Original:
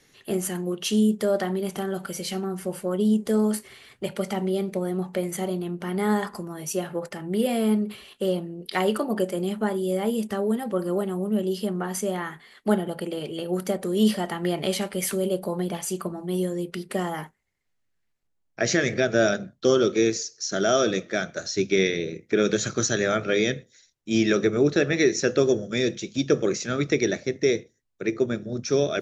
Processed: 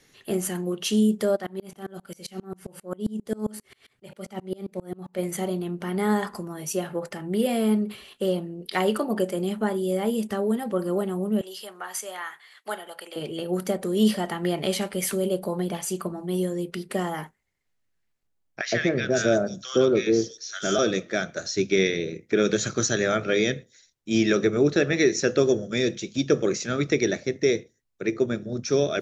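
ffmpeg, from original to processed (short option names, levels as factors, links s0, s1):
-filter_complex "[0:a]asplit=3[s0][s1][s2];[s0]afade=t=out:st=1.35:d=0.02[s3];[s1]aeval=exprs='val(0)*pow(10,-29*if(lt(mod(-7.5*n/s,1),2*abs(-7.5)/1000),1-mod(-7.5*n/s,1)/(2*abs(-7.5)/1000),(mod(-7.5*n/s,1)-2*abs(-7.5)/1000)/(1-2*abs(-7.5)/1000))/20)':c=same,afade=t=in:st=1.35:d=0.02,afade=t=out:st=5.18:d=0.02[s4];[s2]afade=t=in:st=5.18:d=0.02[s5];[s3][s4][s5]amix=inputs=3:normalize=0,asettb=1/sr,asplit=3[s6][s7][s8];[s6]atrim=end=11.414[s9];[s7]atrim=start=11.41:end=13.16,asetpts=PTS-STARTPTS,afade=t=in:d=0.004:c=qsin,afade=t=out:st=1.746:d=0.004:c=qsin,highpass=910[s10];[s8]atrim=start=13.156[s11];[s9][s10]acrossfade=d=0.004:c1=hsin:c2=qsin[s12];[s12][s11]acrossfade=d=0.004:c1=qsin:c2=hsin,asettb=1/sr,asplit=3[s13][s14][s15];[s13]atrim=end=18.614[s16];[s14]atrim=start=18.61:end=20.79,asetpts=PTS-STARTPTS,afade=t=in:d=0.004:c=qsin,afade=t=out:st=2.176:d=0.004:c=qsin,acrossover=split=1200|5300[s17][s18][s19];[s17]adelay=110[s20];[s19]adelay=490[s21];[s20][s18][s21]amix=inputs=3:normalize=0,atrim=end_sample=96138[s22];[s15]atrim=start=20.786[s23];[s16][s22]acrossfade=d=0.004:c1=hsin:c2=qsin[s24];[s24][s23]acrossfade=d=0.004:c1=qsin:c2=hsin"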